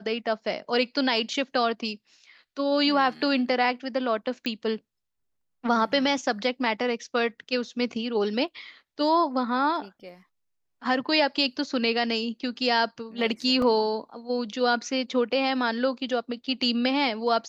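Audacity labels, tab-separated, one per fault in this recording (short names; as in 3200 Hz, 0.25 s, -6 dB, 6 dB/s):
4.460000	4.460000	pop -17 dBFS
13.620000	13.620000	gap 2.9 ms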